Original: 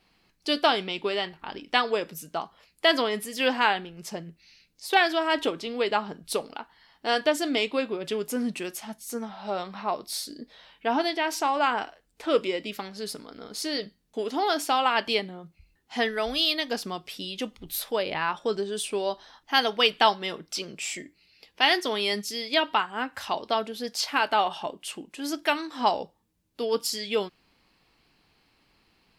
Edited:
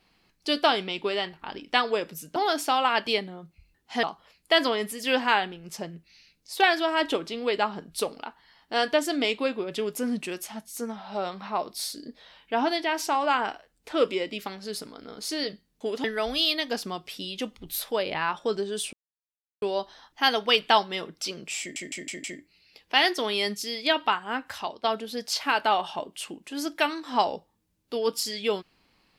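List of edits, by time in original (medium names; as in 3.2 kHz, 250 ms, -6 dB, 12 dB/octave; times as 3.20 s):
14.37–16.04 s: move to 2.36 s
18.93 s: insert silence 0.69 s
20.91 s: stutter 0.16 s, 5 plays
23.14–23.51 s: fade out, to -10.5 dB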